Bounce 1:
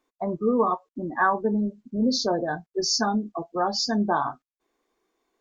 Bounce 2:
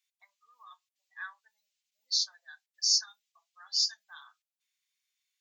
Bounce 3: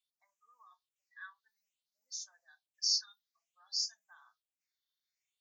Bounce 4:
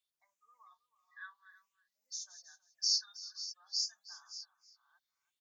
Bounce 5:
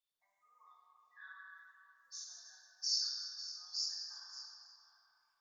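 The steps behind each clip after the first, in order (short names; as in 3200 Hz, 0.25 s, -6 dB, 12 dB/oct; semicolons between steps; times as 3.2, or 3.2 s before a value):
inverse Chebyshev high-pass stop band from 400 Hz, stop band 80 dB
harmonic-percussive split harmonic +6 dB; phaser stages 6, 0.56 Hz, lowest notch 620–4100 Hz; dynamic EQ 1200 Hz, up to -4 dB, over -51 dBFS, Q 0.96; gain -7.5 dB
reverse delay 0.454 s, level -12.5 dB; echo 0.321 s -17 dB
shoebox room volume 190 m³, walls hard, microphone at 0.91 m; gain -7 dB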